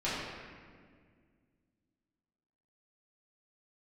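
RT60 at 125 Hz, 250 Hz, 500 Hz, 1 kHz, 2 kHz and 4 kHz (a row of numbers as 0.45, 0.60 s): 2.7, 2.8, 2.1, 1.7, 1.7, 1.2 s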